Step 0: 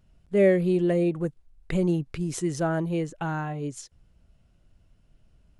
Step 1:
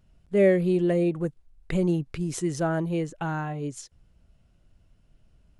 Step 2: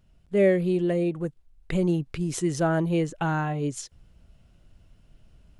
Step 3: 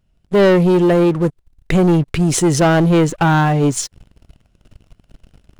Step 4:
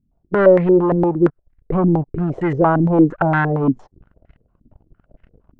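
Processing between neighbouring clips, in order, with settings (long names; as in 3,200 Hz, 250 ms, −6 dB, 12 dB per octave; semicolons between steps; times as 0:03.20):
no processing that can be heard
parametric band 3,200 Hz +2 dB; speech leveller 2 s
leveller curve on the samples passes 3; level +4 dB
low-pass on a step sequencer 8.7 Hz 260–1,900 Hz; level −5.5 dB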